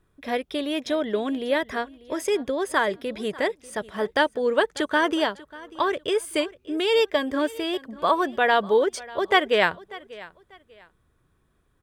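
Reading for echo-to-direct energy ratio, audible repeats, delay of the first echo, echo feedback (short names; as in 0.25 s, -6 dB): -19.5 dB, 2, 0.592 s, 27%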